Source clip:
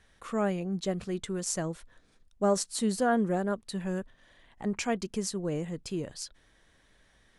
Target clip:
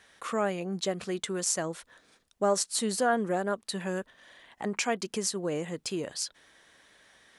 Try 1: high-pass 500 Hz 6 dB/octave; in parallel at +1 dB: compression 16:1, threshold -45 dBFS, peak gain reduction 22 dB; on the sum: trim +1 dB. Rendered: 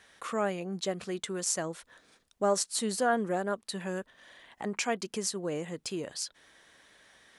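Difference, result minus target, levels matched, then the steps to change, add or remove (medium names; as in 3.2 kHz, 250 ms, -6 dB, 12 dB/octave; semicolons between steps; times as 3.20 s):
compression: peak gain reduction +7.5 dB
change: compression 16:1, threshold -37 dBFS, peak gain reduction 14.5 dB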